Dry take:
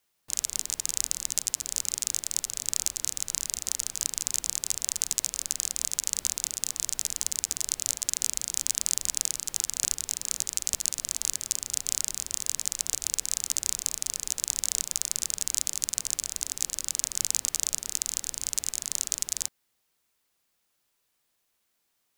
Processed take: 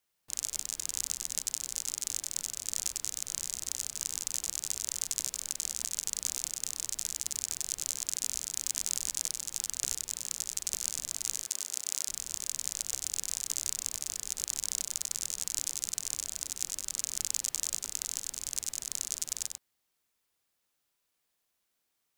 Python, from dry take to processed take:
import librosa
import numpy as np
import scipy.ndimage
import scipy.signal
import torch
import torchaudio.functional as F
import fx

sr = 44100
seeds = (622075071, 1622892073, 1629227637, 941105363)

p1 = fx.highpass(x, sr, hz=320.0, slope=12, at=(11.38, 12.08))
p2 = p1 + fx.echo_single(p1, sr, ms=96, db=-5.0, dry=0)
y = p2 * librosa.db_to_amplitude(-6.0)